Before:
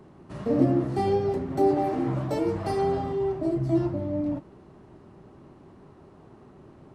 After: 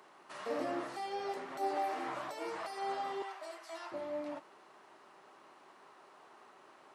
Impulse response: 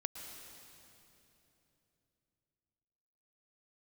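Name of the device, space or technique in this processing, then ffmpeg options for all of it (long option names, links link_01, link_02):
de-esser from a sidechain: -filter_complex "[0:a]highpass=1000,asplit=2[link_01][link_02];[link_02]highpass=4200,apad=whole_len=306141[link_03];[link_01][link_03]sidechaincompress=threshold=-56dB:ratio=6:attack=0.71:release=67,asettb=1/sr,asplit=3[link_04][link_05][link_06];[link_04]atrim=end=3.224[link_07];[link_05]atrim=start=3.22:end=3.92,asetpts=PTS-STARTPTS,afade=type=in:duration=0.004:curve=qsin,afade=type=out:start_time=0.696:duration=0.004:curve=qsin,highpass=910[link_08];[link_06]atrim=start=3.916[link_09];[link_07][link_08]acrossfade=duration=0.004:curve1=hsin:curve2=qsin[link_10];[link_10][link_09]acrossfade=duration=0.004:curve1=qsin:curve2=hsin,volume=4dB"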